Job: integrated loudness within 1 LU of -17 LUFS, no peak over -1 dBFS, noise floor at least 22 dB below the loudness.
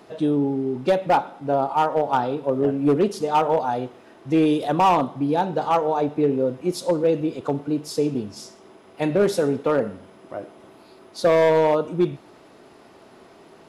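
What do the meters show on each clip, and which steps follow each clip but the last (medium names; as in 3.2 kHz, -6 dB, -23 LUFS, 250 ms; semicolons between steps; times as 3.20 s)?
clipped samples 1.2%; clipping level -12.0 dBFS; loudness -22.0 LUFS; peak level -12.0 dBFS; loudness target -17.0 LUFS
-> clip repair -12 dBFS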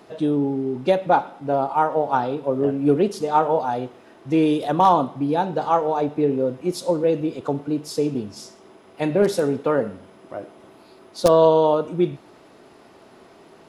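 clipped samples 0.0%; loudness -21.0 LUFS; peak level -3.0 dBFS; loudness target -17.0 LUFS
-> trim +4 dB; peak limiter -1 dBFS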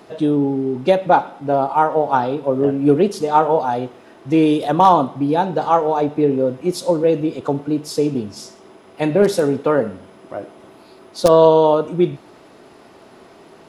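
loudness -17.0 LUFS; peak level -1.0 dBFS; noise floor -46 dBFS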